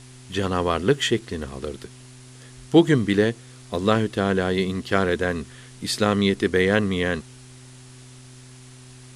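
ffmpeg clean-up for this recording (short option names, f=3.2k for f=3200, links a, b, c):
-af "bandreject=f=126.7:t=h:w=4,bandreject=f=253.4:t=h:w=4,bandreject=f=380.1:t=h:w=4,afwtdn=0.004"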